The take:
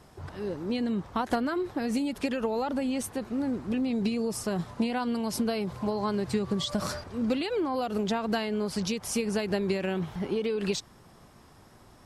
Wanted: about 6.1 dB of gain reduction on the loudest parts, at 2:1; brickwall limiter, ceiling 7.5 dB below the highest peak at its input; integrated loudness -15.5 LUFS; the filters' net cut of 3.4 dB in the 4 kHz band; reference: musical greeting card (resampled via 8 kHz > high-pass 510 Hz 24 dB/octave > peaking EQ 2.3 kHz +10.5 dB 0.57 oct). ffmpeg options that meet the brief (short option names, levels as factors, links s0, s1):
-af "equalizer=f=4000:t=o:g=-8,acompressor=threshold=0.0178:ratio=2,alimiter=level_in=1.88:limit=0.0631:level=0:latency=1,volume=0.531,aresample=8000,aresample=44100,highpass=f=510:w=0.5412,highpass=f=510:w=1.3066,equalizer=f=2300:t=o:w=0.57:g=10.5,volume=25.1"